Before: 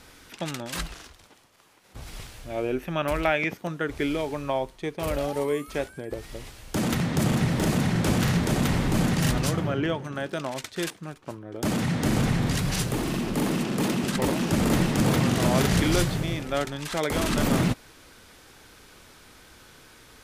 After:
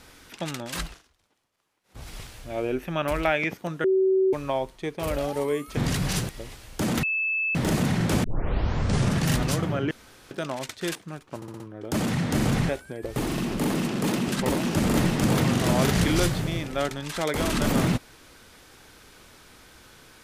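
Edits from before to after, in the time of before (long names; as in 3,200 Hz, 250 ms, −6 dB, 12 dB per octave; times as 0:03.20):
0:00.85–0:02.01: duck −16.5 dB, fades 0.17 s
0:03.84–0:04.33: beep over 380 Hz −17.5 dBFS
0:05.77–0:06.24: swap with 0:12.40–0:12.92
0:06.98–0:07.50: beep over 2,620 Hz −23 dBFS
0:08.19: tape start 1.05 s
0:09.86–0:10.26: fill with room tone
0:11.31: stutter 0.06 s, 5 plays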